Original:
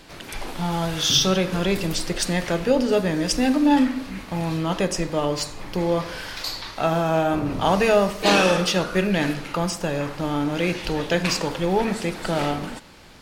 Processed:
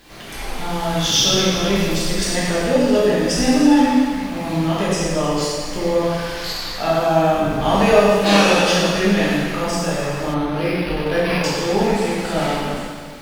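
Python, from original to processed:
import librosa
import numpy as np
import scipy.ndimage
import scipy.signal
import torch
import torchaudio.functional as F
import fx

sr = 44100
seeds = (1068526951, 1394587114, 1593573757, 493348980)

y = fx.quant_dither(x, sr, seeds[0], bits=10, dither='triangular')
y = fx.rev_plate(y, sr, seeds[1], rt60_s=1.8, hf_ratio=1.0, predelay_ms=0, drr_db=-8.0)
y = fx.resample_linear(y, sr, factor=6, at=(10.34, 11.44))
y = y * librosa.db_to_amplitude(-4.0)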